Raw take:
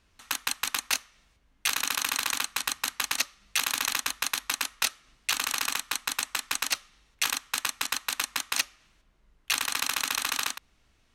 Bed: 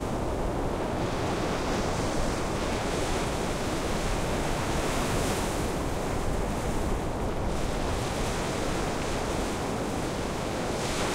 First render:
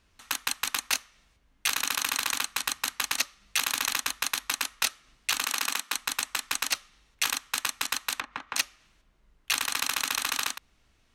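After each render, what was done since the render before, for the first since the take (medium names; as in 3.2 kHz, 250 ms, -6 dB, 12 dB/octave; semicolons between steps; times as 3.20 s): 5.45–5.95 s: brick-wall FIR high-pass 150 Hz; 8.15–8.56 s: low-pass that closes with the level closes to 1.5 kHz, closed at -29.5 dBFS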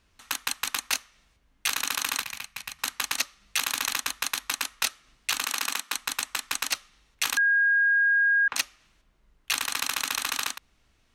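2.22–2.79 s: FFT filter 180 Hz 0 dB, 290 Hz -18 dB, 630 Hz -9 dB, 1.4 kHz -12 dB, 2.4 kHz -3 dB, 3.4 kHz -10 dB, 5.1 kHz -8 dB, 7.9 kHz -12 dB, 12 kHz -8 dB; 7.37–8.48 s: bleep 1.63 kHz -18.5 dBFS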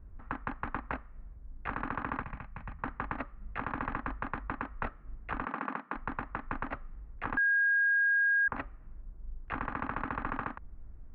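inverse Chebyshev low-pass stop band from 7.2 kHz, stop band 70 dB; tilt EQ -4.5 dB/octave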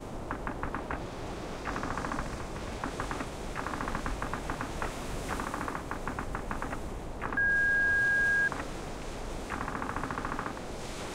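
add bed -10.5 dB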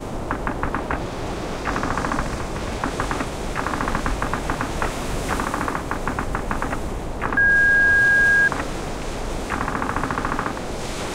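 trim +11 dB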